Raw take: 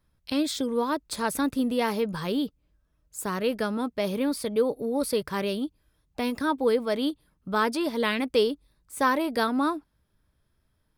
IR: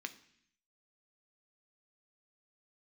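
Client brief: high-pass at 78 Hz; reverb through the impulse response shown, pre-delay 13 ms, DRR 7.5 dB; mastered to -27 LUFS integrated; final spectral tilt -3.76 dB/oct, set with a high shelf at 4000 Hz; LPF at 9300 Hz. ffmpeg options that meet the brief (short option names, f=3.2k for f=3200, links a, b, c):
-filter_complex "[0:a]highpass=78,lowpass=9.3k,highshelf=f=4k:g=-9,asplit=2[a][b];[1:a]atrim=start_sample=2205,adelay=13[c];[b][c]afir=irnorm=-1:irlink=0,volume=-6.5dB[d];[a][d]amix=inputs=2:normalize=0,volume=0.5dB"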